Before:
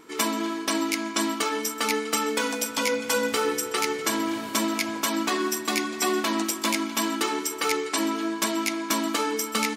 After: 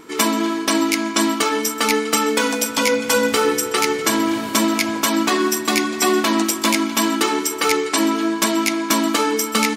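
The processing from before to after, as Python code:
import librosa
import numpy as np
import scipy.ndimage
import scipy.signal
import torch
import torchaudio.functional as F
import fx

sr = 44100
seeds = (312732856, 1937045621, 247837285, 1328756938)

y = fx.low_shelf(x, sr, hz=220.0, db=4.0)
y = F.gain(torch.from_numpy(y), 7.0).numpy()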